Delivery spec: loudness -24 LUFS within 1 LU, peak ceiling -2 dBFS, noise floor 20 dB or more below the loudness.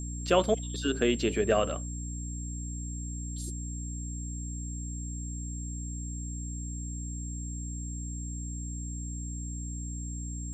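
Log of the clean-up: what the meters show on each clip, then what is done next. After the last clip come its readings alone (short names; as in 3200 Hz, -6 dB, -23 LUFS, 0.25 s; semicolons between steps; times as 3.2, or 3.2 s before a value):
hum 60 Hz; harmonics up to 300 Hz; hum level -34 dBFS; steady tone 7500 Hz; tone level -42 dBFS; loudness -33.5 LUFS; peak -10.0 dBFS; loudness target -24.0 LUFS
-> notches 60/120/180/240/300 Hz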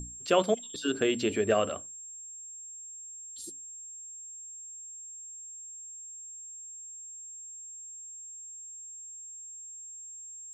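hum none; steady tone 7500 Hz; tone level -42 dBFS
-> notch 7500 Hz, Q 30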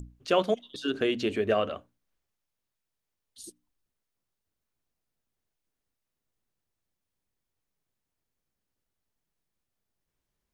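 steady tone none; loudness -28.5 LUFS; peak -11.0 dBFS; loudness target -24.0 LUFS
-> gain +4.5 dB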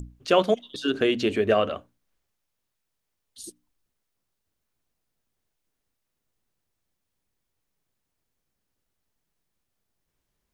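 loudness -24.0 LUFS; peak -6.5 dBFS; noise floor -81 dBFS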